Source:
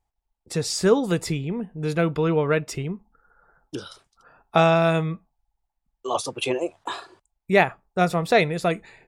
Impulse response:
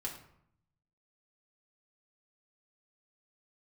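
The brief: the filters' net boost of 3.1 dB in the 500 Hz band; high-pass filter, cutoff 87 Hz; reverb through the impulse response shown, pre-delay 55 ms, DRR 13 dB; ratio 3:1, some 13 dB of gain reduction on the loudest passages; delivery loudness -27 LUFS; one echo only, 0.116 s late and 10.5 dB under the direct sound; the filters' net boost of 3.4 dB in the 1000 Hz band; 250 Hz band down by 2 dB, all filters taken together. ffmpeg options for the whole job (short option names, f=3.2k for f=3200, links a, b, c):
-filter_complex "[0:a]highpass=87,equalizer=f=250:t=o:g=-5,equalizer=f=500:t=o:g=4,equalizer=f=1k:t=o:g=3.5,acompressor=threshold=-28dB:ratio=3,aecho=1:1:116:0.299,asplit=2[a][b];[1:a]atrim=start_sample=2205,adelay=55[c];[b][c]afir=irnorm=-1:irlink=0,volume=-13dB[d];[a][d]amix=inputs=2:normalize=0,volume=3.5dB"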